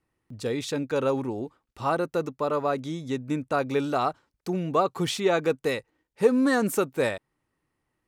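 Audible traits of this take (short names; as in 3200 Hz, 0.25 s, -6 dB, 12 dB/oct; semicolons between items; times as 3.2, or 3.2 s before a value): noise floor -80 dBFS; spectral tilt -4.5 dB/oct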